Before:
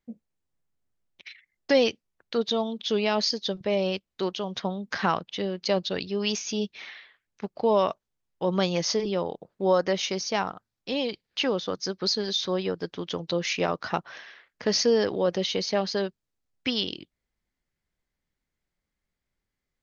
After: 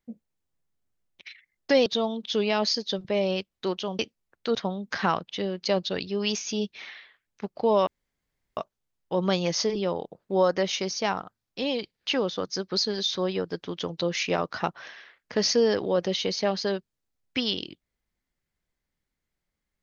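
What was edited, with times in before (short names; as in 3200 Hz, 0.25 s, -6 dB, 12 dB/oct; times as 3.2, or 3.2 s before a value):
1.86–2.42 move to 4.55
7.87 insert room tone 0.70 s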